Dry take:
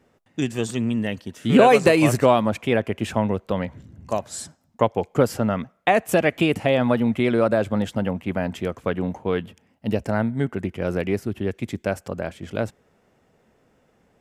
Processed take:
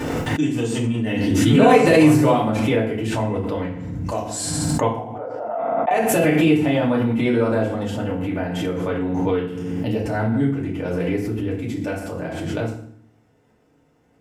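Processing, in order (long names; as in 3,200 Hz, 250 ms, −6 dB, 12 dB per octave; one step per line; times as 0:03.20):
0:04.96–0:05.91: four-pole ladder band-pass 730 Hz, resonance 70%
feedback delay network reverb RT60 0.59 s, low-frequency decay 1.5×, high-frequency decay 0.85×, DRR −6.5 dB
background raised ahead of every attack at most 22 dB per second
level −8.5 dB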